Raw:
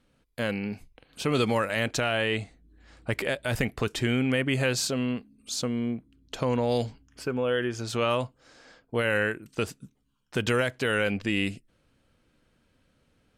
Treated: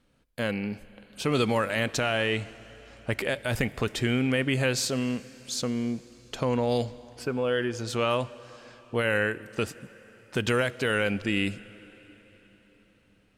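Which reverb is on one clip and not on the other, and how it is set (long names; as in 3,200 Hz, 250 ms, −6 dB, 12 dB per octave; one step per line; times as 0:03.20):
dense smooth reverb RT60 4.3 s, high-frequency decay 1×, DRR 17.5 dB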